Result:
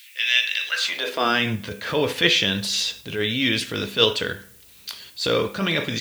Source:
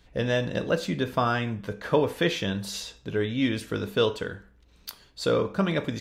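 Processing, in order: frequency weighting D; in parallel at -1 dB: level held to a coarse grid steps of 18 dB; on the sum: transient shaper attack -8 dB, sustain +1 dB; added noise blue -52 dBFS; high-pass sweep 2.3 kHz -> 74 Hz, 0.65–1.66 s; on a send at -18 dB: reverberation RT60 0.70 s, pre-delay 4 ms; on the sum: trim +1 dB

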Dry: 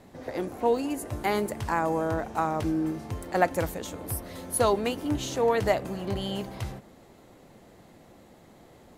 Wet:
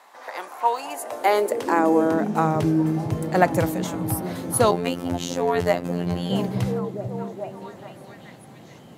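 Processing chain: repeats whose band climbs or falls 430 ms, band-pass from 160 Hz, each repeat 0.7 oct, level -4 dB; 4.71–6.30 s: robot voice 87.4 Hz; high-pass sweep 1 kHz -> 130 Hz, 0.70–2.75 s; trim +4.5 dB

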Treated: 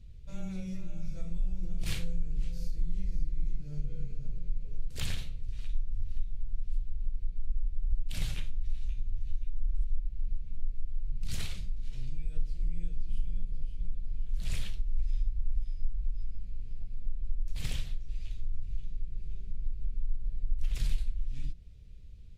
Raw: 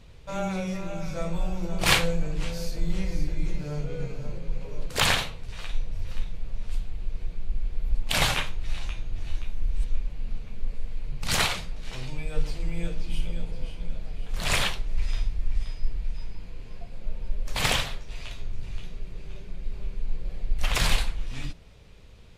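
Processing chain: amplifier tone stack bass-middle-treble 10-0-1; compression 2:1, threshold -37 dBFS, peak gain reduction 10 dB; trim +8.5 dB

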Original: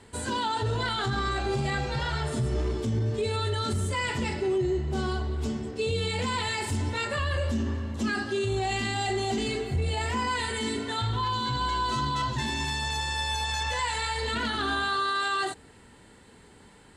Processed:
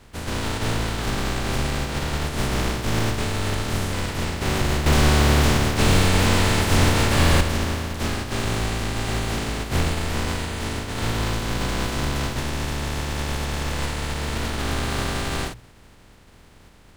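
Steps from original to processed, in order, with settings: spectral contrast reduction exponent 0.15; 4.86–7.41 s: waveshaping leveller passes 3; RIAA curve playback; hum notches 60/120 Hz; attacks held to a fixed rise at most 460 dB/s; trim +4 dB

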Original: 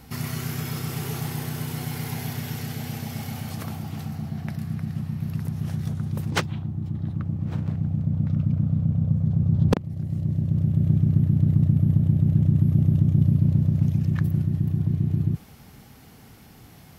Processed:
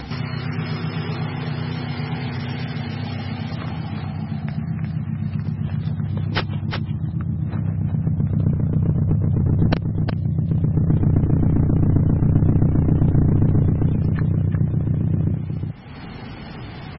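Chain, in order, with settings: one-sided wavefolder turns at -17.5 dBFS; delay 361 ms -6 dB; upward compressor, threshold -25 dBFS; low-pass 6.8 kHz 12 dB/octave, from 11.02 s 11 kHz, from 12.32 s 5.4 kHz; vibrato 2.4 Hz 29 cents; trim +3.5 dB; MP3 16 kbps 24 kHz

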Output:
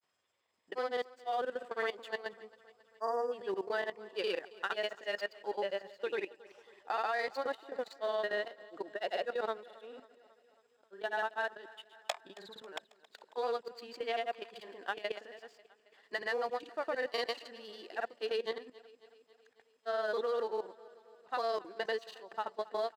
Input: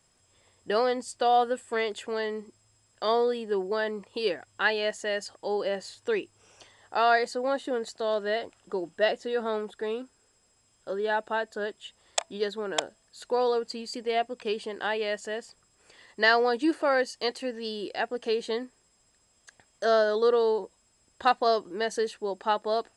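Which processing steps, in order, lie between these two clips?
dead-time distortion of 0.055 ms; frequency weighting A; spectral replace 2.82–3.29 s, 1.9–4.7 kHz before; treble shelf 5.7 kHz -11.5 dB; level held to a coarse grid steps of 16 dB; granulator, pitch spread up and down by 0 st; feedback delay 272 ms, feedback 60%, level -20.5 dB

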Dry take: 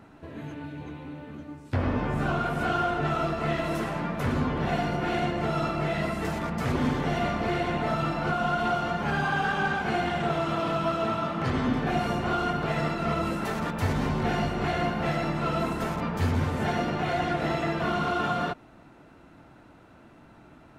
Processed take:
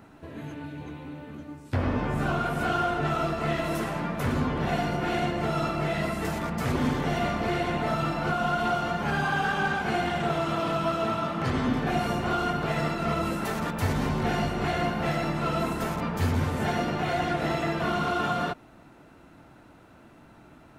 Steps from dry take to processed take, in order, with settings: treble shelf 8.3 kHz +8 dB

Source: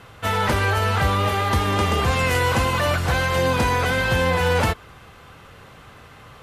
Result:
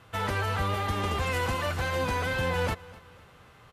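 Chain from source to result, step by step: time stretch by phase-locked vocoder 0.58×; feedback delay 251 ms, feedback 39%, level -21 dB; trim -8 dB

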